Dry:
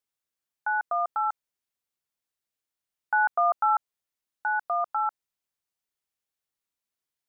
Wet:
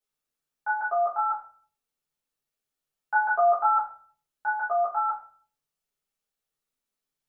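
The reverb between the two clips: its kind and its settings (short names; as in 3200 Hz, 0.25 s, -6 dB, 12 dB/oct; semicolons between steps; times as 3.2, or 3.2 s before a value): shoebox room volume 42 m³, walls mixed, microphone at 1.6 m; gain -7.5 dB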